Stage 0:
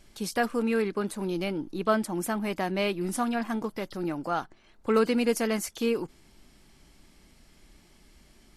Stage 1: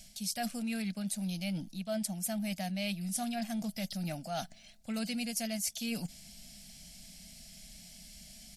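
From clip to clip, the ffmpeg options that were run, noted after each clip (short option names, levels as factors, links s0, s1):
-af "firequalizer=gain_entry='entry(130,0);entry(190,9);entry(370,-23);entry(660,6);entry(1000,-18);entry(1500,-5);entry(2300,4);entry(5100,13)':delay=0.05:min_phase=1,areverse,acompressor=threshold=0.02:ratio=5,areverse"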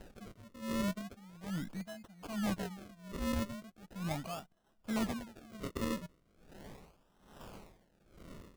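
-af "acrusher=samples=38:mix=1:aa=0.000001:lfo=1:lforange=38:lforate=0.38,aeval=exprs='val(0)*pow(10,-22*(0.5-0.5*cos(2*PI*1.2*n/s))/20)':c=same,volume=1.33"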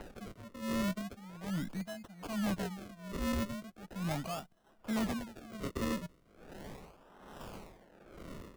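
-filter_complex "[0:a]acrossover=split=260|2500[s0][s1][s2];[s1]acompressor=mode=upward:threshold=0.00316:ratio=2.5[s3];[s0][s3][s2]amix=inputs=3:normalize=0,asoftclip=type=tanh:threshold=0.0282,volume=1.5"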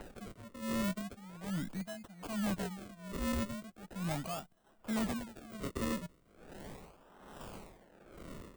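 -af "aexciter=amount=1.7:drive=2.3:freq=7700,volume=0.891"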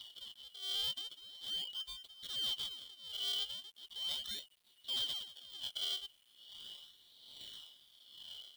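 -af "afftfilt=real='real(if(lt(b,272),68*(eq(floor(b/68),0)*2+eq(floor(b/68),1)*3+eq(floor(b/68),2)*0+eq(floor(b/68),3)*1)+mod(b,68),b),0)':imag='imag(if(lt(b,272),68*(eq(floor(b/68),0)*2+eq(floor(b/68),1)*3+eq(floor(b/68),2)*0+eq(floor(b/68),3)*1)+mod(b,68),b),0)':win_size=2048:overlap=0.75,acrusher=bits=10:mix=0:aa=0.000001,volume=0.668"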